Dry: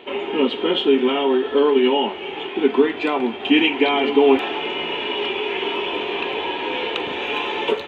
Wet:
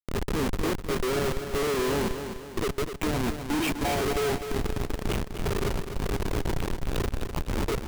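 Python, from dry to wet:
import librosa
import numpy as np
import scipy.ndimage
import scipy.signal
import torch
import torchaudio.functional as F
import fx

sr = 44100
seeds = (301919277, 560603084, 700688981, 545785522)

y = fx.phaser_stages(x, sr, stages=4, low_hz=180.0, high_hz=3100.0, hz=0.67, feedback_pct=35)
y = fx.schmitt(y, sr, flips_db=-21.0)
y = fx.echo_feedback(y, sr, ms=252, feedback_pct=45, wet_db=-8.5)
y = y * 10.0 ** (-4.5 / 20.0)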